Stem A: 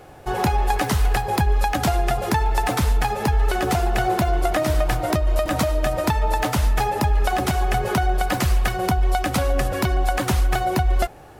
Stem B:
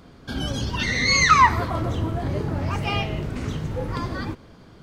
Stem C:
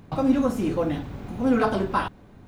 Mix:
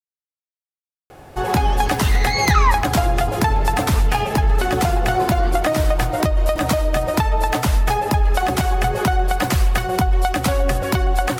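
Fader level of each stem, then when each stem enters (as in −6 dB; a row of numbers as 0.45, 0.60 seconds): +2.5 dB, −3.5 dB, muted; 1.10 s, 1.25 s, muted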